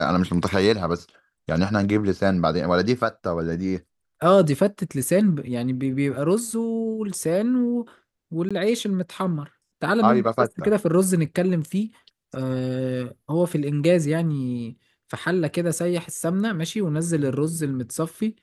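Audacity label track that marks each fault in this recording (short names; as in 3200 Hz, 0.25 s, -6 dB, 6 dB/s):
8.490000	8.510000	gap 16 ms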